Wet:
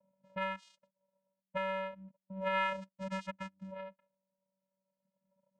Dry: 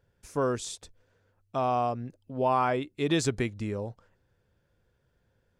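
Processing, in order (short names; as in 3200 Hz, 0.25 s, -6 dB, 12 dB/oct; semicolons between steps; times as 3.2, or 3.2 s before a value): reverb removal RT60 1.8 s; auto-wah 450–1400 Hz, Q 2.6, up, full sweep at -29.5 dBFS; in parallel at -7 dB: overloaded stage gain 35 dB; on the sum: vocoder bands 4, square 191 Hz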